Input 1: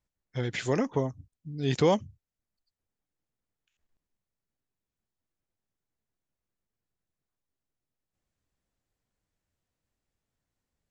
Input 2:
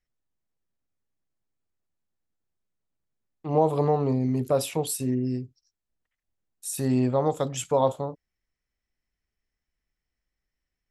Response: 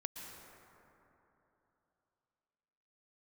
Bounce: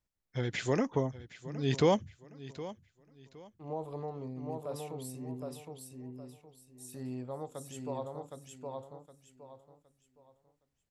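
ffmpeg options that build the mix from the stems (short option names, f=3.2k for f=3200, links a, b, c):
-filter_complex "[0:a]volume=-2.5dB,asplit=2[a][b];[b]volume=-16dB[c];[1:a]adelay=150,volume=-17dB,asplit=2[d][e];[e]volume=-3dB[f];[c][f]amix=inputs=2:normalize=0,aecho=0:1:765|1530|2295|3060:1|0.29|0.0841|0.0244[g];[a][d][g]amix=inputs=3:normalize=0"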